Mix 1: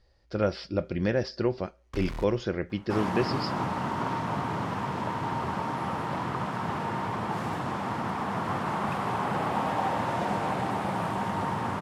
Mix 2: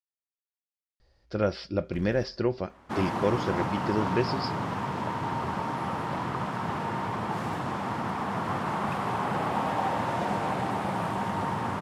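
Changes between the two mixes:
speech: entry +1.00 s; first sound -10.5 dB

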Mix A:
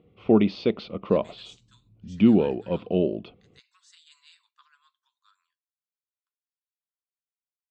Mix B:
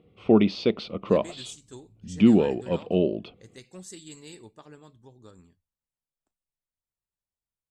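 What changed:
speech: remove rippled Chebyshev high-pass 990 Hz, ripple 6 dB; master: remove distance through air 130 m

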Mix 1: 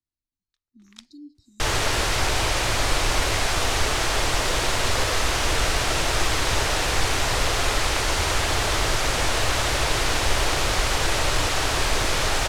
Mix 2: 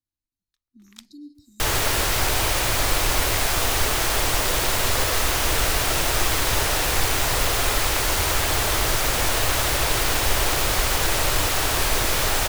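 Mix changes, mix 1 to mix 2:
speech: send on; master: remove low-pass 7.7 kHz 12 dB/octave

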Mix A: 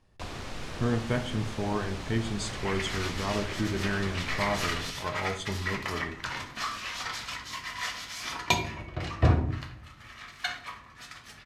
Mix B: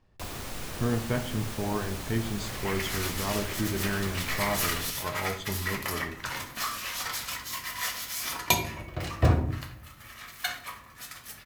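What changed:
speech: add distance through air 150 m; second sound: add peaking EQ 540 Hz +3.5 dB 0.28 oct; master: remove low-pass 5.3 kHz 12 dB/octave

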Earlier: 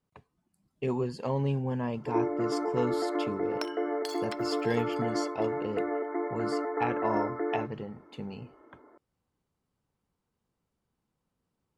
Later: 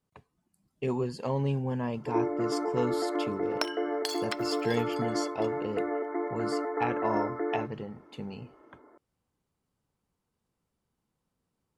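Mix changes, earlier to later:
speech: add treble shelf 6.2 kHz +5 dB; second sound +6.5 dB

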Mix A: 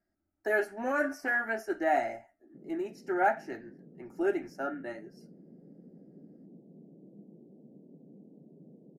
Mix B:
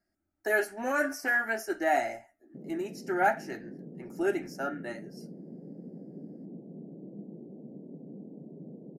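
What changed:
background +8.5 dB; master: add treble shelf 3.2 kHz +11.5 dB

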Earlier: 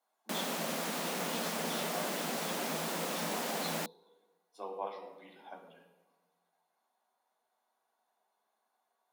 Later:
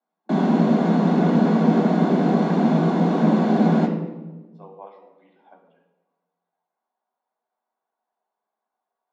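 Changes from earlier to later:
background: send on; master: add tape spacing loss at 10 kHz 32 dB

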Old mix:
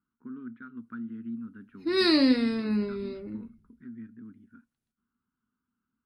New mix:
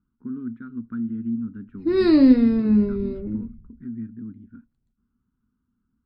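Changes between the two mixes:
speech: remove distance through air 290 m; master: add tilt EQ -4.5 dB/octave

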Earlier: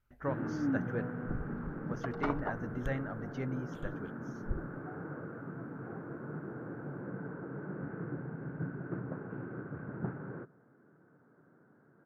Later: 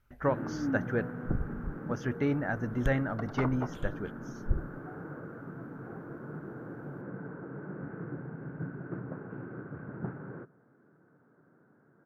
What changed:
speech +7.5 dB; second sound: entry +1.15 s

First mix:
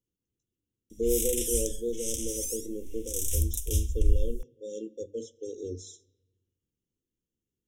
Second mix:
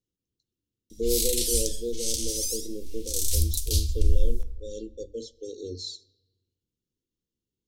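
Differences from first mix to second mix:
background: send on; master: remove Butterworth band-stop 4.4 kHz, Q 1.8

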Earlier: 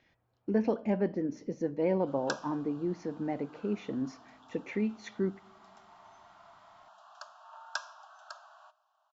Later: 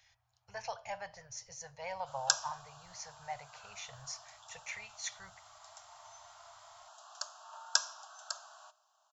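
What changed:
speech: add Chebyshev band-stop 110–730 Hz, order 3; master: remove low-pass 2.7 kHz 12 dB/octave

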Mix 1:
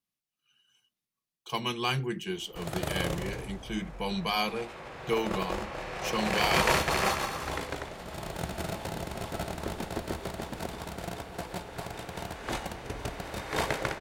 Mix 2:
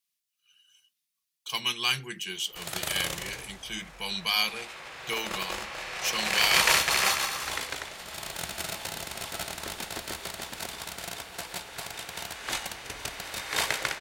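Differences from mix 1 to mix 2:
speech: add peaking EQ 670 Hz -3.5 dB 2.2 oct; master: add tilt shelf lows -9.5 dB, about 1.1 kHz

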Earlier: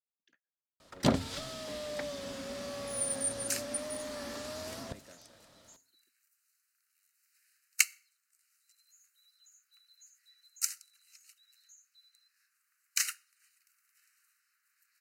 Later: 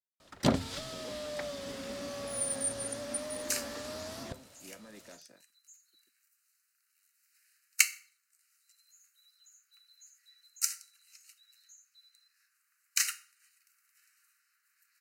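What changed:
speech +3.5 dB; first sound: entry -0.60 s; second sound: send +11.0 dB

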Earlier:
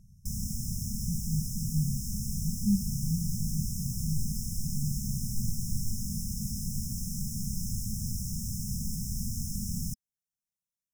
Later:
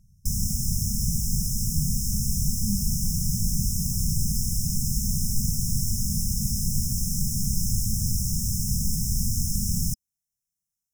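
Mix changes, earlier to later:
background +9.5 dB; master: add peaking EQ 330 Hz -7.5 dB 1.8 oct

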